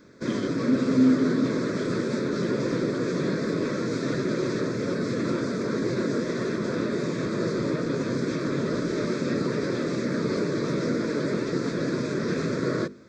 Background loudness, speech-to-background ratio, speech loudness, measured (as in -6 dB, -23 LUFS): -27.5 LUFS, 2.0 dB, -25.5 LUFS